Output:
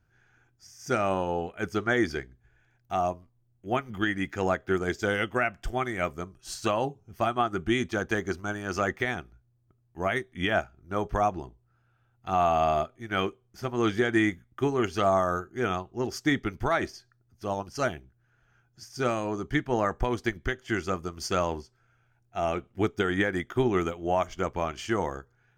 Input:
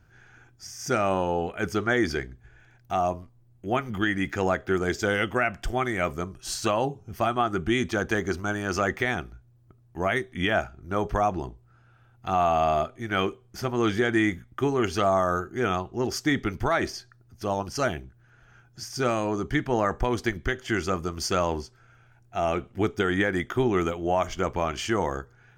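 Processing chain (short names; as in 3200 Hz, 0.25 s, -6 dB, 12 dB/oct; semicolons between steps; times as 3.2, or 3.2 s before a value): upward expander 1.5:1, over -40 dBFS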